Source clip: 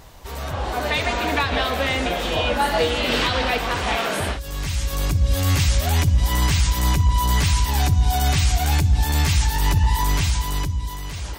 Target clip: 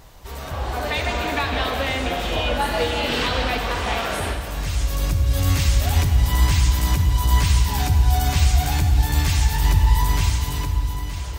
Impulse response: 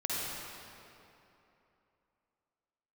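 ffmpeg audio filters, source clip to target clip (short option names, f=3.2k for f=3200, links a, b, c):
-filter_complex "[0:a]asplit=2[a][b];[1:a]atrim=start_sample=2205,lowshelf=f=67:g=11,highshelf=f=12k:g=6[c];[b][c]afir=irnorm=-1:irlink=0,volume=-9dB[d];[a][d]amix=inputs=2:normalize=0,volume=-5dB"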